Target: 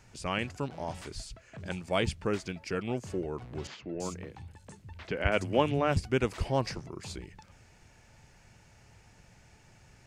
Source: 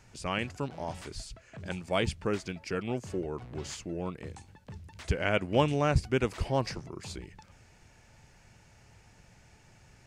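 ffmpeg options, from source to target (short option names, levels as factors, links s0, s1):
-filter_complex "[0:a]asettb=1/sr,asplit=3[s0][s1][s2];[s0]atrim=end=3.674[s3];[s1]atrim=start=3.67:end=5.97,asetpts=PTS-STARTPTS,afade=t=in:d=0.004:c=qsin,afade=t=out:st=2.296:d=0.004:c=qsin,acrossover=split=150|4400[s4][s5][s6];[s4]adelay=150[s7];[s6]adelay=330[s8];[s7][s5][s8]amix=inputs=3:normalize=0,atrim=end_sample=101430[s9];[s2]atrim=start=5.966[s10];[s3][s9]acrossfade=d=0.004:c1=hsin:c2=qsin[s11];[s11][s10]acrossfade=d=0.004:c1=qsin:c2=hsin"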